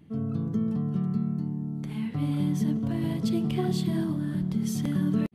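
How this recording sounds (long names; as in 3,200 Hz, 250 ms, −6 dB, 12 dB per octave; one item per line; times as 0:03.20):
background noise floor −35 dBFS
spectral slope −9.5 dB per octave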